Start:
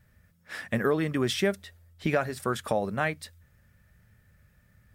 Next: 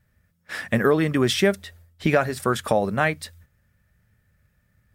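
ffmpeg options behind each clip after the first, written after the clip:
-af "agate=range=-10dB:threshold=-56dB:ratio=16:detection=peak,volume=6.5dB"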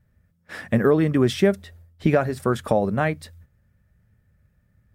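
-af "tiltshelf=f=970:g=5,volume=-2dB"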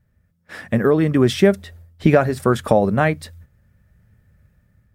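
-af "dynaudnorm=f=440:g=5:m=11.5dB"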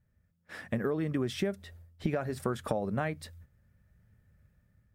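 -af "acompressor=threshold=-19dB:ratio=5,volume=-9dB"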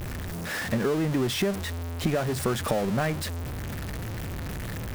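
-af "aeval=exprs='val(0)+0.5*0.0316*sgn(val(0))':c=same,volume=2.5dB"

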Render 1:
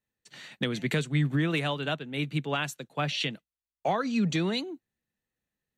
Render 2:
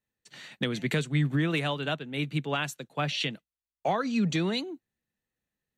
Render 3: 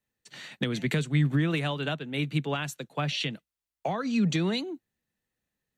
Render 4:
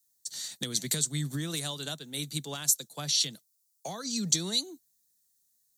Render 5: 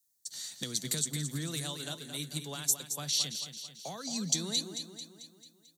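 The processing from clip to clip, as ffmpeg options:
-af anull
-filter_complex "[0:a]acrossover=split=230[a][b];[b]acompressor=threshold=-30dB:ratio=6[c];[a][c]amix=inputs=2:normalize=0,volume=2.5dB"
-af "aexciter=amount=13.7:drive=7.3:freq=4.1k,volume=-9dB"
-af "aecho=1:1:221|442|663|884|1105|1326:0.355|0.188|0.0997|0.0528|0.028|0.0148,volume=-3.5dB"

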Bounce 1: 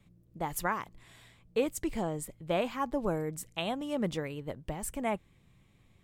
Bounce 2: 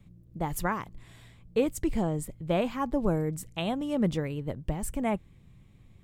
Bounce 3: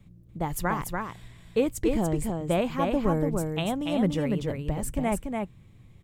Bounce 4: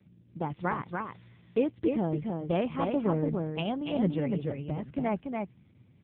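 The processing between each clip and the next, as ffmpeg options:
-af "lowshelf=f=300:g=10"
-af "aecho=1:1:289:0.631,volume=1.5dB"
-filter_complex "[0:a]asplit=2[a][b];[b]acrusher=bits=5:mode=log:mix=0:aa=0.000001,volume=-11.5dB[c];[a][c]amix=inputs=2:normalize=0,volume=-4dB" -ar 8000 -c:a libopencore_amrnb -b:a 5900

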